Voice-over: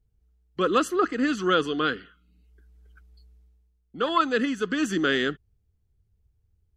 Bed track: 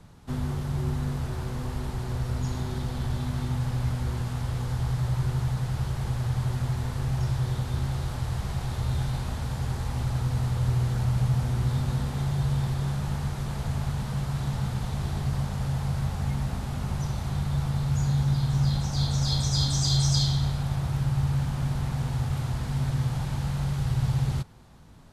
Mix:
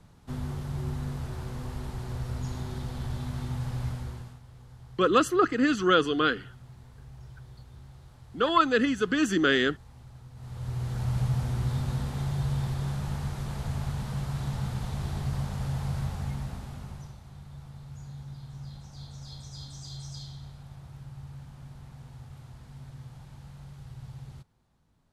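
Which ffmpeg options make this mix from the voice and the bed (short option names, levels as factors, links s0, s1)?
-filter_complex "[0:a]adelay=4400,volume=1.06[s0];[1:a]volume=4.73,afade=t=out:st=3.85:d=0.55:silence=0.149624,afade=t=in:st=10.35:d=0.81:silence=0.125893,afade=t=out:st=15.98:d=1.22:silence=0.177828[s1];[s0][s1]amix=inputs=2:normalize=0"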